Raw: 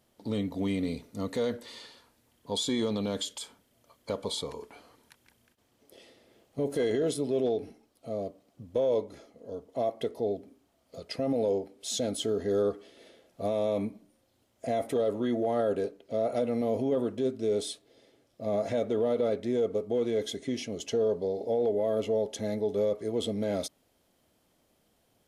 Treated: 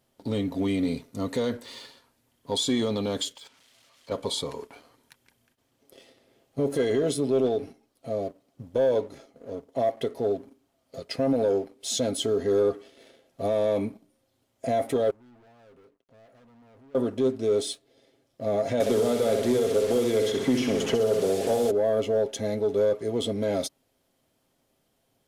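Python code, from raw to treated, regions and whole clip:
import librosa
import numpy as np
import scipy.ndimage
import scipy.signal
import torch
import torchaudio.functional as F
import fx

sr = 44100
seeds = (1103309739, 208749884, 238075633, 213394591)

y = fx.chain(x, sr, fx.crossing_spikes(level_db=-33.5),
    fx.lowpass(hz=3700.0, slope=12),
    fx.level_steps(step_db=10), at=(3.35, 4.12))
y = fx.chain(y, sr, fx.low_shelf(hz=200.0, db=10.5),
    fx.leveller(passes=5),
    fx.gate_flip(shuts_db=-26.0, range_db=-36), at=(15.1, 16.95))
y = fx.chain(y, sr, fx.delta_mod(bps=64000, step_db=-40.0),
    fx.room_flutter(wall_m=10.8, rt60_s=0.66),
    fx.band_squash(depth_pct=100), at=(18.8, 21.71))
y = y + 0.32 * np.pad(y, (int(7.5 * sr / 1000.0), 0))[:len(y)]
y = fx.leveller(y, sr, passes=1)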